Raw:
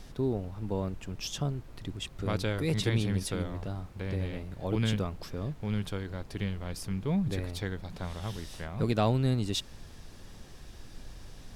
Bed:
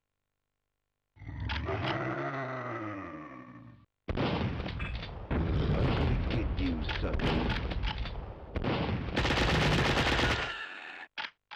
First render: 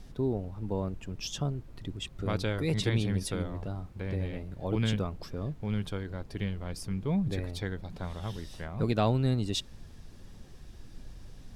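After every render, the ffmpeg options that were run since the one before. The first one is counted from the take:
-af "afftdn=nr=6:nf=-49"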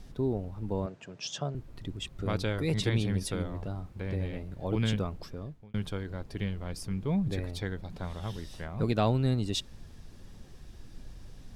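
-filter_complex "[0:a]asettb=1/sr,asplit=3[a][b][c];[a]atrim=end=0.864[d];[b]atrim=start=0.86:end=1.55,asetpts=PTS-STARTPTS,afade=t=in:d=0.004:c=qsin,afade=t=out:st=0.686:d=0.004:c=qsin,highpass=f=140:w=0.5412,highpass=f=140:w=1.3066,equalizer=f=200:t=q:w=4:g=-8,equalizer=f=300:t=q:w=4:g=-7,equalizer=f=630:t=q:w=4:g=6,equalizer=f=1.6k:t=q:w=4:g=4,lowpass=f=7.7k:w=0.5412,lowpass=f=7.7k:w=1.3066[e];[c]atrim=start=1.546[f];[d][e]acrossfade=d=0.004:c1=hsin:c2=qsin[g];[g][f]acrossfade=d=0.004:c1=qsin:c2=hsin,asplit=2[h][i];[h]atrim=end=5.74,asetpts=PTS-STARTPTS,afade=t=out:st=5.17:d=0.57[j];[i]atrim=start=5.74,asetpts=PTS-STARTPTS,afade=t=in:d=0.004:c=hsin[k];[j][k]concat=n=2:v=0:a=1"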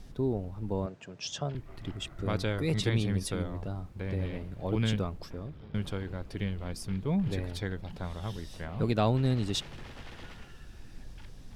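-filter_complex "[1:a]volume=-21dB[a];[0:a][a]amix=inputs=2:normalize=0"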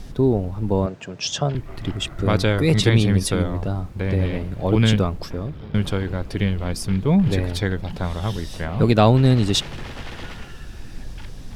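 -af "volume=12dB"

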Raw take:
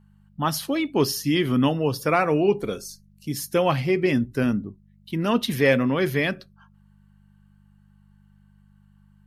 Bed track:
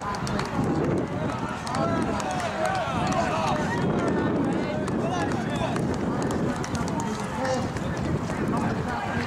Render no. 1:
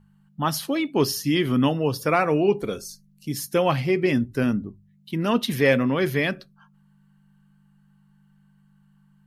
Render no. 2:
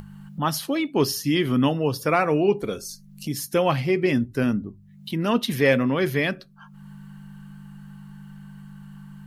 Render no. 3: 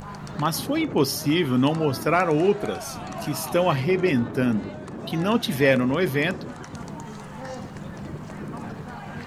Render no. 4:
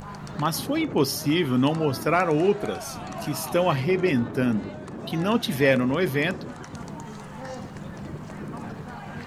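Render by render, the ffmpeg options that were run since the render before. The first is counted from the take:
-af "bandreject=f=50:t=h:w=4,bandreject=f=100:t=h:w=4"
-af "acompressor=mode=upward:threshold=-27dB:ratio=2.5"
-filter_complex "[1:a]volume=-9.5dB[a];[0:a][a]amix=inputs=2:normalize=0"
-af "volume=-1dB"

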